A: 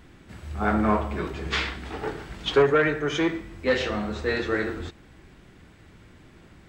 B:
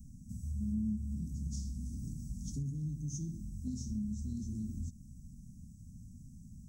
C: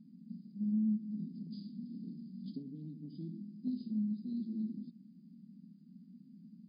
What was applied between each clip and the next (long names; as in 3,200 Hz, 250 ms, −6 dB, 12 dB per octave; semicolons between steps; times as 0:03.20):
Chebyshev band-stop filter 240–5,800 Hz, order 5; downward compressor 2.5 to 1, threshold −39 dBFS, peak gain reduction 11 dB; level +2 dB
linear-phase brick-wall band-pass 170–5,000 Hz; level +3.5 dB